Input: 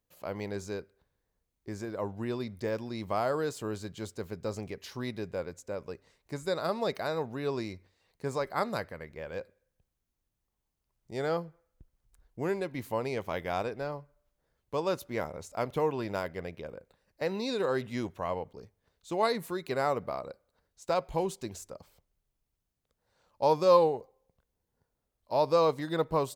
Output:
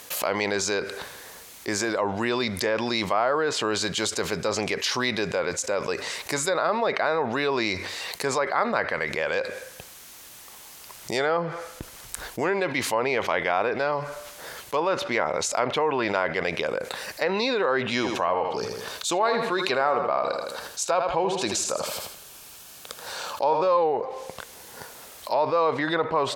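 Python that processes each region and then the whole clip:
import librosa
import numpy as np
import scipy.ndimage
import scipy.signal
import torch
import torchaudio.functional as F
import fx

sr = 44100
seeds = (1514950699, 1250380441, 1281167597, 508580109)

y = fx.chain(x, sr, fx.notch(hz=2000.0, q=8.1),
    fx.echo_feedback(ms=80, feedback_pct=32, wet_db=-11), at=(17.84, 23.68))
y = fx.highpass(y, sr, hz=1300.0, slope=6)
y = fx.env_lowpass_down(y, sr, base_hz=2100.0, full_db=-35.5)
y = fx.env_flatten(y, sr, amount_pct=70)
y = y * 10.0 ** (5.5 / 20.0)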